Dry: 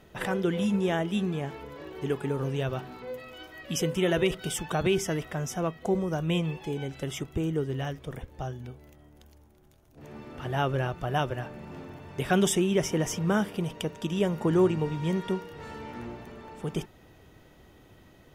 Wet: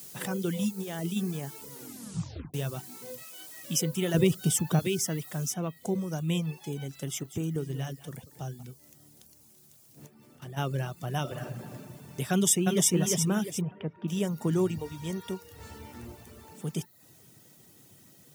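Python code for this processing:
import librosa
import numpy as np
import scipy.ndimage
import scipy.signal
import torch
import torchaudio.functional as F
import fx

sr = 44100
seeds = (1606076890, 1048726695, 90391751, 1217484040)

y = fx.over_compress(x, sr, threshold_db=-30.0, ratio=-1.0, at=(0.68, 1.15), fade=0.02)
y = fx.low_shelf(y, sr, hz=280.0, db=-11.5, at=(3.23, 3.64))
y = fx.low_shelf(y, sr, hz=470.0, db=10.0, at=(4.14, 4.79))
y = fx.noise_floor_step(y, sr, seeds[0], at_s=5.53, before_db=-52, after_db=-64, tilt_db=0.0)
y = fx.echo_single(y, sr, ms=187, db=-12.5, at=(6.88, 8.63))
y = fx.level_steps(y, sr, step_db=13, at=(10.06, 10.56), fade=0.02)
y = fx.reverb_throw(y, sr, start_s=11.2, length_s=0.52, rt60_s=1.6, drr_db=1.0)
y = fx.echo_throw(y, sr, start_s=12.31, length_s=0.57, ms=350, feedback_pct=40, wet_db=-1.5)
y = fx.lowpass(y, sr, hz=2200.0, slope=24, at=(13.61, 14.08))
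y = fx.low_shelf_res(y, sr, hz=100.0, db=13.0, q=3.0, at=(14.77, 16.52))
y = fx.edit(y, sr, fx.tape_stop(start_s=1.7, length_s=0.84), tone=tone)
y = fx.dereverb_blind(y, sr, rt60_s=0.5)
y = scipy.signal.sosfilt(scipy.signal.butter(4, 120.0, 'highpass', fs=sr, output='sos'), y)
y = fx.bass_treble(y, sr, bass_db=9, treble_db=14)
y = F.gain(torch.from_numpy(y), -6.5).numpy()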